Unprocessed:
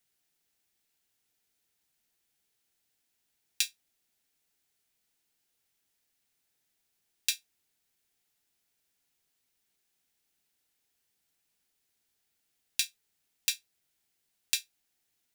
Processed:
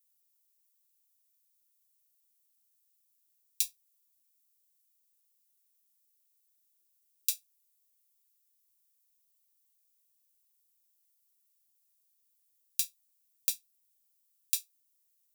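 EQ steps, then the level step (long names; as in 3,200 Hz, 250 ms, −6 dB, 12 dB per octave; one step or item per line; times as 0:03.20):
first-order pre-emphasis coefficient 0.8
spectral tilt +2.5 dB per octave
−7.5 dB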